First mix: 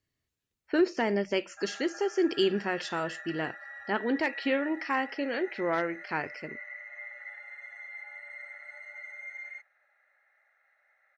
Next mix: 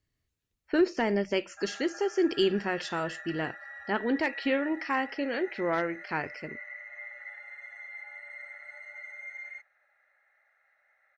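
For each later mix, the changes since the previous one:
master: add low shelf 73 Hz +12 dB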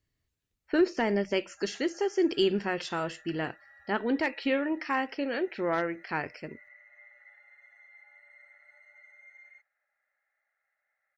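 background -12.0 dB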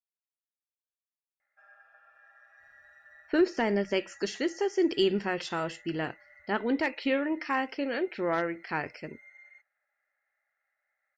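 speech: entry +2.60 s

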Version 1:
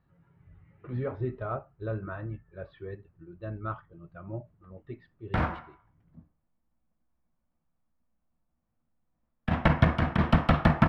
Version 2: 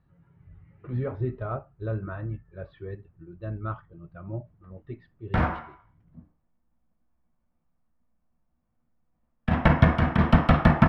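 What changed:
background: send +6.5 dB; master: add low shelf 230 Hz +5.5 dB

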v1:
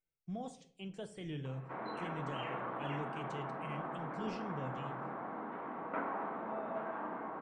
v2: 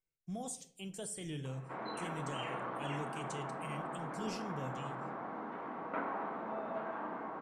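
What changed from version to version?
master: remove LPF 3100 Hz 12 dB/oct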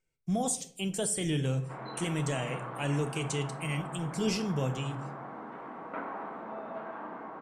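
speech +12.0 dB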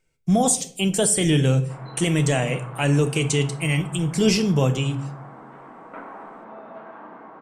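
speech +11.5 dB

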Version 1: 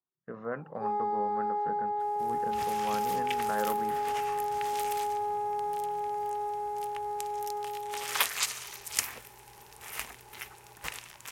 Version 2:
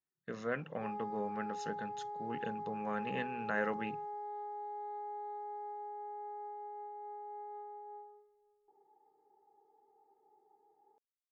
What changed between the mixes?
speech: remove synth low-pass 1100 Hz, resonance Q 1.6; first sound -11.5 dB; second sound: muted

